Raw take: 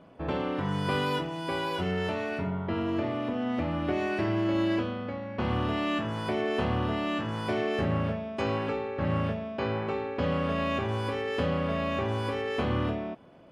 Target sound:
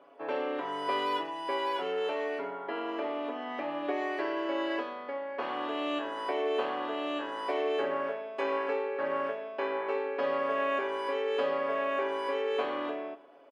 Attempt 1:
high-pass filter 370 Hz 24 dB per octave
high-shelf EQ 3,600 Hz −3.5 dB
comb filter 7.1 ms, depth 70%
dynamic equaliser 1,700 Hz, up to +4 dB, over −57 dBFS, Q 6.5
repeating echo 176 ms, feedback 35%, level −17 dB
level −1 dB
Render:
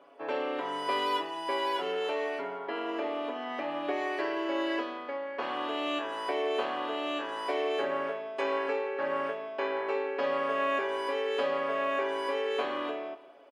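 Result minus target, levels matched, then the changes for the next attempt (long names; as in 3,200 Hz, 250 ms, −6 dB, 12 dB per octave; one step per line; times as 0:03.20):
echo 81 ms late; 8,000 Hz band +5.0 dB
change: high-shelf EQ 3,600 Hz −10.5 dB
change: repeating echo 95 ms, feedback 35%, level −17 dB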